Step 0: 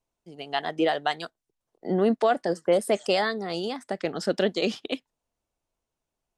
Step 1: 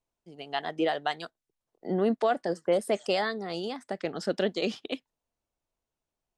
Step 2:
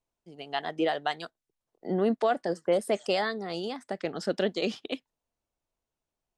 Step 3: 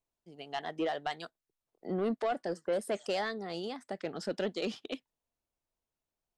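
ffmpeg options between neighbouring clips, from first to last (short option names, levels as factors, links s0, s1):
-af "highshelf=f=9800:g=-5.5,volume=0.668"
-af anull
-af "asoftclip=type=tanh:threshold=0.1,volume=0.631"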